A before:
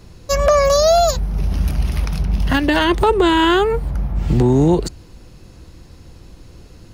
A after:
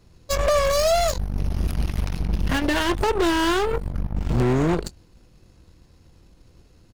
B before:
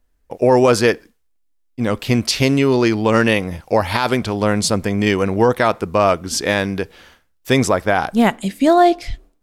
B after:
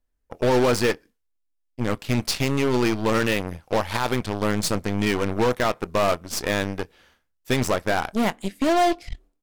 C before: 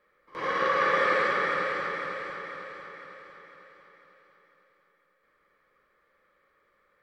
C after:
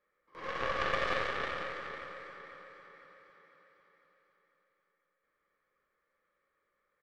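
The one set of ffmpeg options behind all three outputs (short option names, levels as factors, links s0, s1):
-filter_complex "[0:a]asplit=2[s0][s1];[s1]adelay=24,volume=0.2[s2];[s0][s2]amix=inputs=2:normalize=0,aeval=exprs='0.794*(cos(1*acos(clip(val(0)/0.794,-1,1)))-cos(1*PI/2))+0.0891*(cos(3*acos(clip(val(0)/0.794,-1,1)))-cos(3*PI/2))+0.0141*(cos(5*acos(clip(val(0)/0.794,-1,1)))-cos(5*PI/2))+0.0562*(cos(7*acos(clip(val(0)/0.794,-1,1)))-cos(7*PI/2))+0.0447*(cos(8*acos(clip(val(0)/0.794,-1,1)))-cos(8*PI/2))':c=same,volume=5.62,asoftclip=hard,volume=0.178"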